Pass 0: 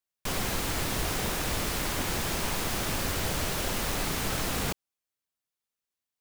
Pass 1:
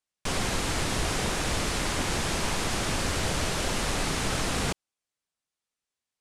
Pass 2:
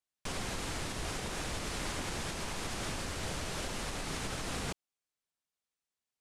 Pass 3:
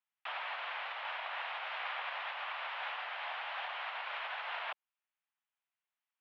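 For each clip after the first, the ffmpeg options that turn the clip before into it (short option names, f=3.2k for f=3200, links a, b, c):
-af "lowpass=f=10k:w=0.5412,lowpass=f=10k:w=1.3066,volume=2.5dB"
-af "alimiter=limit=-22.5dB:level=0:latency=1:release=208,volume=-5dB"
-af "highpass=f=520:t=q:w=0.5412,highpass=f=520:t=q:w=1.307,lowpass=f=3k:t=q:w=0.5176,lowpass=f=3k:t=q:w=0.7071,lowpass=f=3k:t=q:w=1.932,afreqshift=200,volume=2.5dB"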